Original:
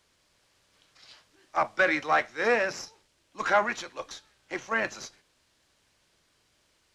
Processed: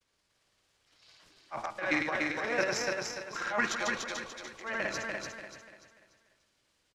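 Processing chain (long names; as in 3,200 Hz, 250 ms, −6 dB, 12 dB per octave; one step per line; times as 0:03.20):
granular cloud, grains 18 per second, pitch spread up and down by 0 semitones
transient designer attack −8 dB, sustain +12 dB
hum removal 54.53 Hz, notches 28
on a send: repeating echo 292 ms, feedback 37%, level −3.5 dB
on the sum: level −5.5 dB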